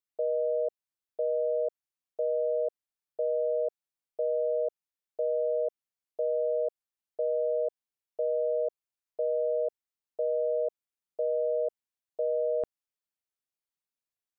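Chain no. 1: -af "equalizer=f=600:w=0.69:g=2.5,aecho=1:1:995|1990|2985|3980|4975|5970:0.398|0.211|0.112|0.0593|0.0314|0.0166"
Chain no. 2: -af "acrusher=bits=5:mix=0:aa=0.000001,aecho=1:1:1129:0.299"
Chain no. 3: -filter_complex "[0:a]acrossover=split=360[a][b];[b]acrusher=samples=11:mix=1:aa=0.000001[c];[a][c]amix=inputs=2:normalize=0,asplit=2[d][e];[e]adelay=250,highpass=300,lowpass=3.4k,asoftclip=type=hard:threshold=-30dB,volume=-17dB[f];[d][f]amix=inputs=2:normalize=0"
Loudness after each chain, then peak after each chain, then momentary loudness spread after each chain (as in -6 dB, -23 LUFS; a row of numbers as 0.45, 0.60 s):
-27.5, -29.0, -30.5 LUFS; -18.5, -21.5, -21.5 dBFS; 16, 18, 14 LU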